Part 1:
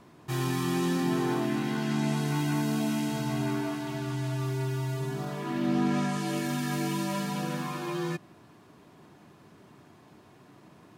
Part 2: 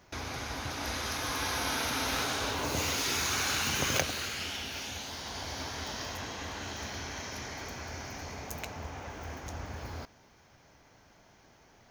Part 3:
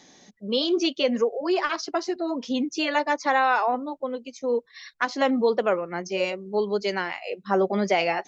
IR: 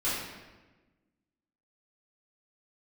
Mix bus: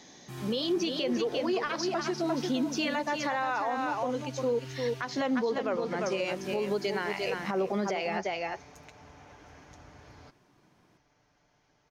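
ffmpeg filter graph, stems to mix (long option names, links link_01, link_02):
-filter_complex "[0:a]volume=-11.5dB[link_01];[1:a]lowpass=7600,aecho=1:1:6.8:0.45,acompressor=threshold=-37dB:ratio=6,adelay=250,volume=-10dB[link_02];[2:a]volume=0.5dB,asplit=2[link_03][link_04];[link_04]volume=-7.5dB,aecho=0:1:349:1[link_05];[link_01][link_02][link_03][link_05]amix=inputs=4:normalize=0,alimiter=limit=-21.5dB:level=0:latency=1:release=158"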